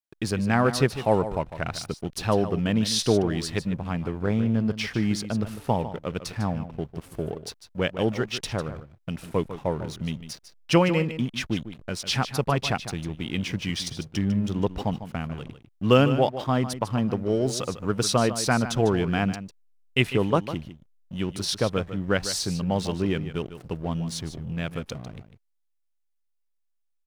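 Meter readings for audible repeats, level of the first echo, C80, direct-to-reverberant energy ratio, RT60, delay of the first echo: 1, −12.0 dB, no reverb audible, no reverb audible, no reverb audible, 150 ms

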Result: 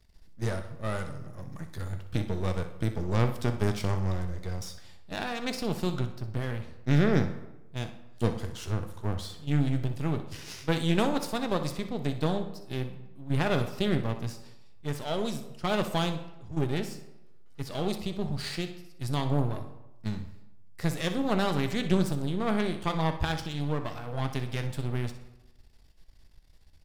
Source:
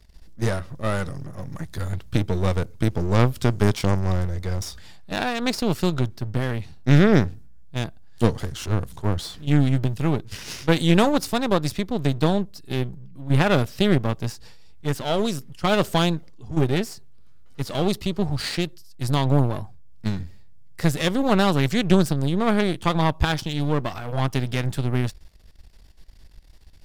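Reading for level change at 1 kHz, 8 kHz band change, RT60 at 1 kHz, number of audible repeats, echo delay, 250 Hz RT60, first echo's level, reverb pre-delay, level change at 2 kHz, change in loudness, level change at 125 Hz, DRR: −7.5 dB, −8.0 dB, 1.0 s, 1, 62 ms, 0.90 s, −13.0 dB, 3 ms, −7.5 dB, −7.5 dB, −7.5 dB, 6.5 dB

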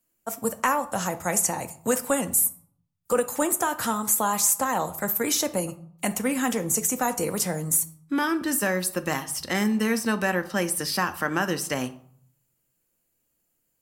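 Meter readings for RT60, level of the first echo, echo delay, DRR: 0.60 s, no echo audible, no echo audible, 9.0 dB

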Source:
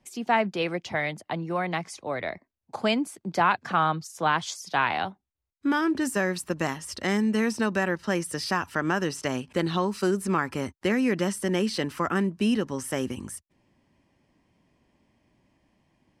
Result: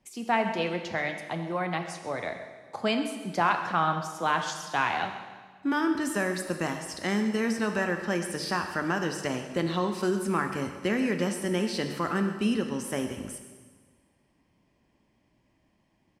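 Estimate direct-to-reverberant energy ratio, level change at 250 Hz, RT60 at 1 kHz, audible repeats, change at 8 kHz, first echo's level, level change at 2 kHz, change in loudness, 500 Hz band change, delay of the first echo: 5.0 dB, −2.0 dB, 1.5 s, 1, −2.0 dB, −16.0 dB, −1.5 dB, −2.0 dB, −2.0 dB, 131 ms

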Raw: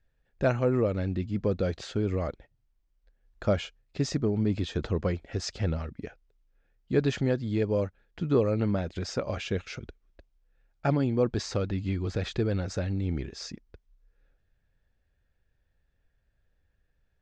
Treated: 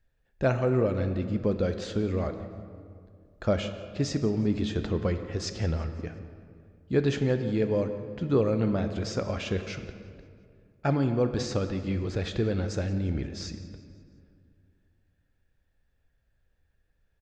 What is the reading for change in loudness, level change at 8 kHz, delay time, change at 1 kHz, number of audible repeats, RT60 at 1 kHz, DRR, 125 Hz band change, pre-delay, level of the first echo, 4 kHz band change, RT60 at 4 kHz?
+0.5 dB, +0.5 dB, 175 ms, +1.0 dB, 3, 2.1 s, 7.5 dB, +0.5 dB, 9 ms, −20.0 dB, +0.5 dB, 1.4 s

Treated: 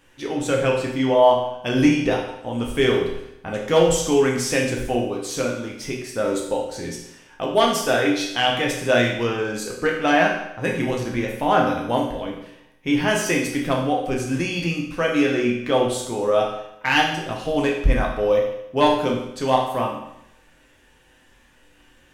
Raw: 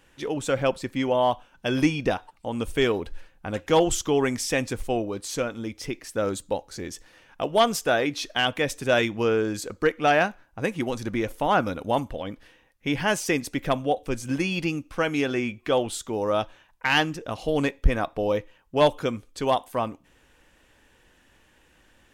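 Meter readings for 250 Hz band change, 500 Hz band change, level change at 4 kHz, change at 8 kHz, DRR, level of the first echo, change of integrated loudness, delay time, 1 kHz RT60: +5.0 dB, +4.5 dB, +4.0 dB, +3.5 dB, −2.0 dB, no echo audible, +4.5 dB, no echo audible, 0.80 s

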